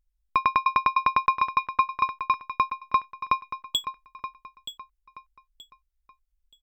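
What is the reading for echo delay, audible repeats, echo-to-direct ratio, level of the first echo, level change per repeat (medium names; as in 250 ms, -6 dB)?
926 ms, 3, -11.0 dB, -11.5 dB, -10.5 dB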